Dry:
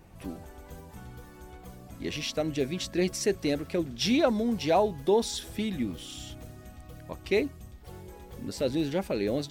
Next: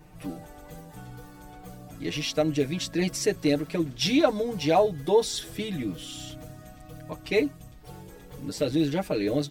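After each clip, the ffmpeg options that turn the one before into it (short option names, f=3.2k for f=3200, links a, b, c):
-af "aecho=1:1:6.6:0.9"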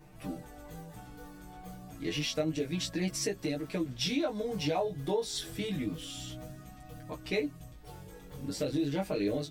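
-af "acompressor=threshold=-25dB:ratio=6,flanger=delay=15:depth=6.6:speed=0.29"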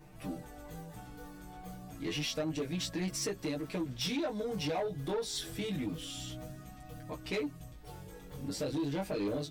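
-af "asoftclip=type=tanh:threshold=-28.5dB"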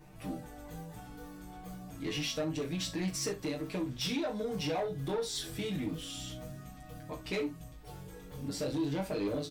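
-af "aecho=1:1:37|65:0.316|0.15"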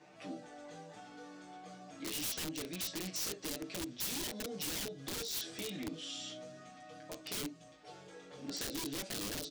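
-filter_complex "[0:a]highpass=350,equalizer=f=440:t=q:w=4:g=-3,equalizer=f=630:t=q:w=4:g=3,equalizer=f=970:t=q:w=4:g=-5,lowpass=f=6.8k:w=0.5412,lowpass=f=6.8k:w=1.3066,aeval=exprs='(mod(42.2*val(0)+1,2)-1)/42.2':c=same,acrossover=split=450|3000[a][b][c];[b]acompressor=threshold=-52dB:ratio=6[d];[a][d][c]amix=inputs=3:normalize=0,volume=1.5dB"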